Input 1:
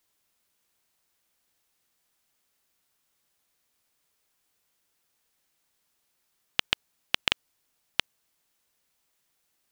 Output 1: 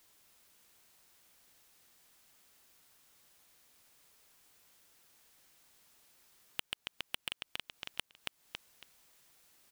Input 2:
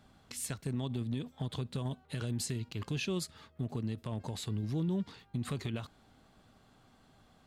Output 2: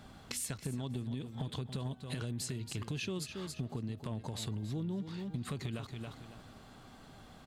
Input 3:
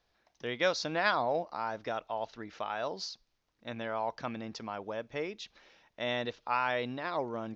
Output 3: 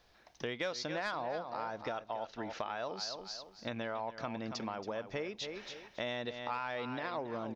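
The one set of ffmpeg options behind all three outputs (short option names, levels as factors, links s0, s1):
-af "aecho=1:1:277|554|831:0.251|0.0527|0.0111,asoftclip=type=tanh:threshold=0.141,acompressor=threshold=0.00501:ratio=4,volume=2.66"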